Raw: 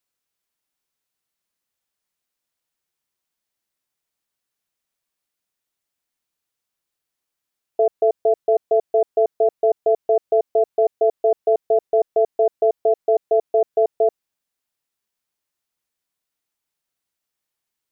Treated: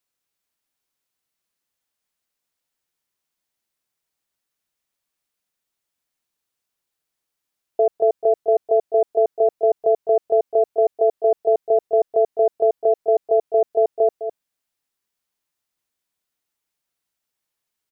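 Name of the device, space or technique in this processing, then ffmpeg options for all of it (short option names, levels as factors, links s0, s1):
ducked delay: -filter_complex "[0:a]asplit=3[s0][s1][s2];[s1]adelay=207,volume=0.447[s3];[s2]apad=whole_len=799255[s4];[s3][s4]sidechaincompress=threshold=0.0355:ratio=8:attack=16:release=207[s5];[s0][s5]amix=inputs=2:normalize=0"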